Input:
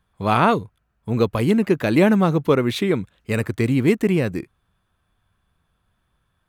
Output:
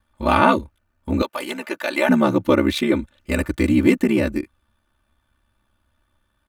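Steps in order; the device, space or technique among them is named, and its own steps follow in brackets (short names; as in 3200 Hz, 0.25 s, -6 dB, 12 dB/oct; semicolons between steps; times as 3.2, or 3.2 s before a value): ring-modulated robot voice (ring modulator 34 Hz; comb 3.4 ms, depth 86%); 1.22–2.09 HPF 690 Hz 12 dB/oct; gain +2.5 dB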